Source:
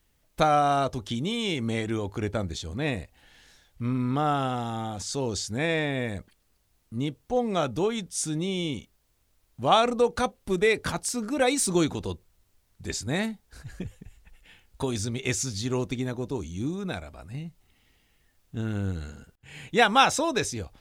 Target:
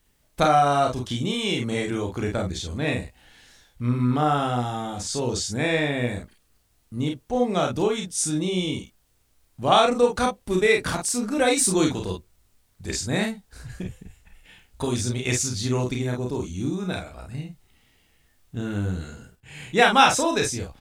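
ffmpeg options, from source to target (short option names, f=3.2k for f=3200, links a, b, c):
-af "equalizer=f=8.7k:t=o:w=0.43:g=2.5,aecho=1:1:33|49:0.562|0.531,volume=1.5dB"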